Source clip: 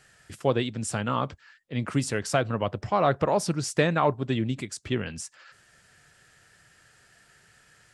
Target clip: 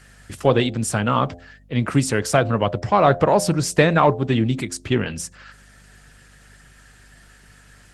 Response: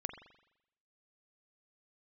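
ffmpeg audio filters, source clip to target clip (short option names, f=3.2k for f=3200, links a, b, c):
-filter_complex "[0:a]aeval=exprs='val(0)+0.00126*(sin(2*PI*50*n/s)+sin(2*PI*2*50*n/s)/2+sin(2*PI*3*50*n/s)/3+sin(2*PI*4*50*n/s)/4+sin(2*PI*5*50*n/s)/5)':c=same,asplit=2[a][b];[b]asoftclip=type=tanh:threshold=-20dB,volume=-11dB[c];[a][c]amix=inputs=2:normalize=0,bandreject=f=87.12:t=h:w=4,bandreject=f=174.24:t=h:w=4,bandreject=f=261.36:t=h:w=4,bandreject=f=348.48:t=h:w=4,bandreject=f=435.6:t=h:w=4,bandreject=f=522.72:t=h:w=4,bandreject=f=609.84:t=h:w=4,bandreject=f=696.96:t=h:w=4,bandreject=f=784.08:t=h:w=4,volume=6.5dB" -ar 48000 -c:a libopus -b:a 20k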